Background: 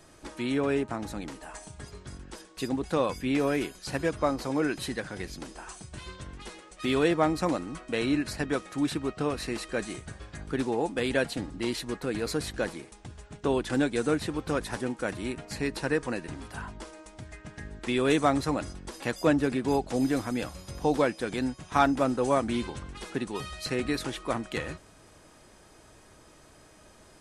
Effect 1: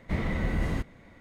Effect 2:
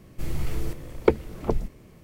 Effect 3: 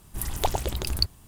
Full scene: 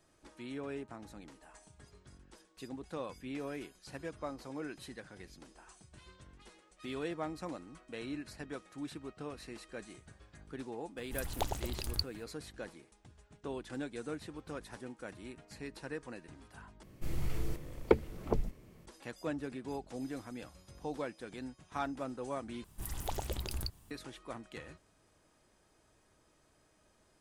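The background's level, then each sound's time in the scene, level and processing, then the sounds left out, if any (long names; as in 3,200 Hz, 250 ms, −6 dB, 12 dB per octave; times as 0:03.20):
background −14.5 dB
0:10.97: mix in 3 −10 dB
0:16.83: overwrite with 2 −7 dB
0:22.64: overwrite with 3 −8.5 dB + brickwall limiter −15.5 dBFS
not used: 1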